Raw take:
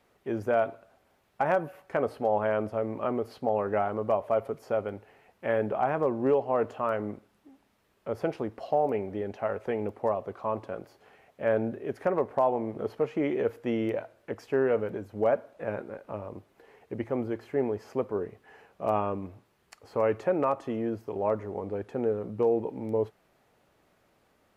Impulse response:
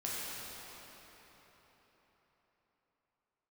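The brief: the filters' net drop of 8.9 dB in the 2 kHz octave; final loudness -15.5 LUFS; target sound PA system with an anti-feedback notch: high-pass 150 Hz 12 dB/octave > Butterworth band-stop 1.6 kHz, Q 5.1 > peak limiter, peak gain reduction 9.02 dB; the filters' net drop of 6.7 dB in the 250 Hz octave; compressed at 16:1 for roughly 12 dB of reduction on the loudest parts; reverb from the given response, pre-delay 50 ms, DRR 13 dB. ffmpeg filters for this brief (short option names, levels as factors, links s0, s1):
-filter_complex "[0:a]equalizer=f=250:t=o:g=-8.5,equalizer=f=2000:t=o:g=-5,acompressor=threshold=0.02:ratio=16,asplit=2[s0][s1];[1:a]atrim=start_sample=2205,adelay=50[s2];[s1][s2]afir=irnorm=-1:irlink=0,volume=0.133[s3];[s0][s3]amix=inputs=2:normalize=0,highpass=150,asuperstop=centerf=1600:order=8:qfactor=5.1,volume=22.4,alimiter=limit=0.631:level=0:latency=1"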